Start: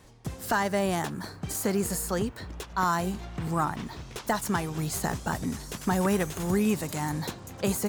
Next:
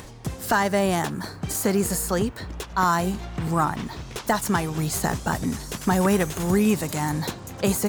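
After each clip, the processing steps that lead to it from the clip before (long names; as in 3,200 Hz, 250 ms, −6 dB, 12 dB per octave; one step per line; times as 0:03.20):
upward compression, threshold −39 dBFS
level +5 dB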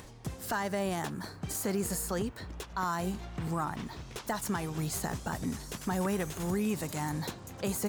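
brickwall limiter −15 dBFS, peak gain reduction 4 dB
level −8 dB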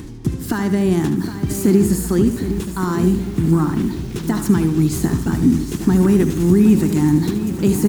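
low shelf with overshoot 430 Hz +9.5 dB, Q 3
repeating echo 74 ms, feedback 38%, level −10 dB
feedback echo at a low word length 764 ms, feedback 55%, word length 7 bits, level −10.5 dB
level +7 dB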